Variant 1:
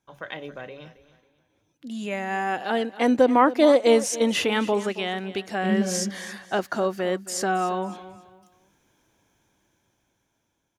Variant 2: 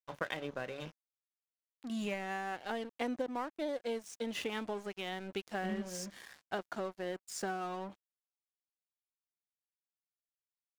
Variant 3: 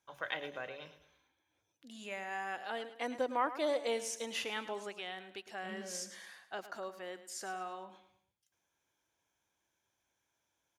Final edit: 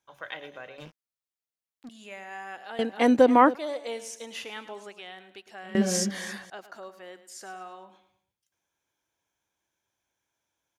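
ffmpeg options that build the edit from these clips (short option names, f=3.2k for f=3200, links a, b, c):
-filter_complex "[0:a]asplit=2[a][b];[2:a]asplit=4[c][d][e][f];[c]atrim=end=0.782[g];[1:a]atrim=start=0.778:end=1.892[h];[d]atrim=start=1.888:end=2.792[i];[a]atrim=start=2.788:end=3.552[j];[e]atrim=start=3.548:end=5.752[k];[b]atrim=start=5.748:end=6.502[l];[f]atrim=start=6.498[m];[g][h]acrossfade=d=0.004:c1=hsin:c2=hsin[n];[n][i]acrossfade=d=0.004:c1=hsin:c2=hsin[o];[o][j]acrossfade=d=0.004:c1=hsin:c2=hsin[p];[p][k]acrossfade=d=0.004:c1=hsin:c2=hsin[q];[q][l]acrossfade=d=0.004:c1=hsin:c2=hsin[r];[r][m]acrossfade=d=0.004:c1=hsin:c2=hsin"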